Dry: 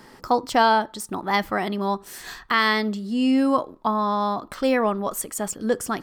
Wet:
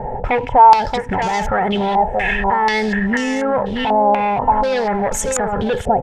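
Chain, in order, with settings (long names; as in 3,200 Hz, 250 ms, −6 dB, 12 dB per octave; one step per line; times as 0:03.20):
low-shelf EQ 420 Hz +10.5 dB
comb filter 2.3 ms, depth 47%
in parallel at 0 dB: downward compressor 12 to 1, threshold −28 dBFS, peak gain reduction 18.5 dB
on the sum: phaser with its sweep stopped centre 1,200 Hz, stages 6
soft clipping −16.5 dBFS, distortion −12 dB
log-companded quantiser 6 bits
repeating echo 628 ms, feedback 30%, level −9 dB
boost into a limiter +24.5 dB
low-pass on a step sequencer 4.1 Hz 720–6,500 Hz
level −12 dB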